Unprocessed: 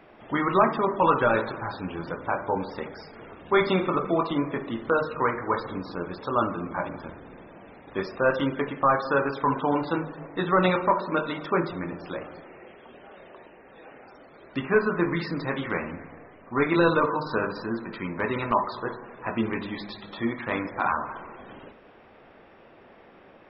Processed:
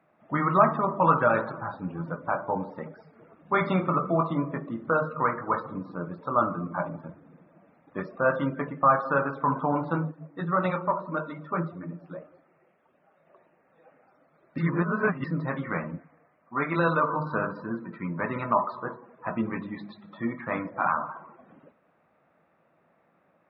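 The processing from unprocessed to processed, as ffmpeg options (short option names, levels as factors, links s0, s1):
-filter_complex "[0:a]asettb=1/sr,asplit=3[s0][s1][s2];[s0]atrim=end=10.114[s3];[s1]atrim=start=10.11:end=13.27,asetpts=PTS-STARTPTS,afade=t=in:d=0.004:c=qsin,afade=t=out:st=3.156:d=0.004:c=qsin,flanger=delay=1.8:depth=6.2:regen=-49:speed=1.8:shape=triangular[s4];[s2]atrim=start=13.266[s5];[s3][s4]acrossfade=d=0.004:c1=hsin:c2=qsin[s6];[s6][s5]acrossfade=d=0.004:c1=qsin:c2=hsin,asettb=1/sr,asplit=3[s7][s8][s9];[s7]atrim=end=15.994[s10];[s8]atrim=start=15.99:end=17.1,asetpts=PTS-STARTPTS,afade=t=in:d=0.004:c=qsin,afade=t=out:st=1.106:d=0.004:c=qsin,lowshelf=f=340:g=-7[s11];[s9]atrim=start=17.096[s12];[s10][s11]acrossfade=d=0.004:c1=hsin:c2=qsin[s13];[s13][s12]acrossfade=d=0.004:c1=qsin:c2=hsin,asplit=3[s14][s15][s16];[s14]atrim=end=14.582[s17];[s15]atrim=start=14.578:end=15.242,asetpts=PTS-STARTPTS,areverse[s18];[s16]atrim=start=15.238[s19];[s17][s18]acrossfade=d=0.004:c1=hsin:c2=hsin[s20];[s20][s19]acrossfade=d=0.004:c1=hsin:c2=hsin,highpass=92,afftdn=nr=13:nf=-34,equalizer=f=160:t=o:w=0.33:g=10,equalizer=f=400:t=o:w=0.33:g=-7,equalizer=f=630:t=o:w=0.33:g=4,equalizer=f=1250:t=o:w=0.33:g=5,equalizer=f=3150:t=o:w=0.33:g=-10,equalizer=f=5000:t=o:w=0.33:g=-12,volume=0.794"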